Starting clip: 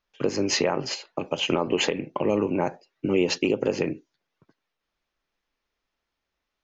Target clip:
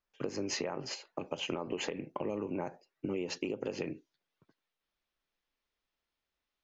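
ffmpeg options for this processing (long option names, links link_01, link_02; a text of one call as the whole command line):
ffmpeg -i in.wav -af "asetnsamples=nb_out_samples=441:pad=0,asendcmd='3.64 equalizer g 3.5',equalizer=frequency=3500:width=1.5:gain=-3.5,acompressor=threshold=-24dB:ratio=6,volume=-7.5dB" out.wav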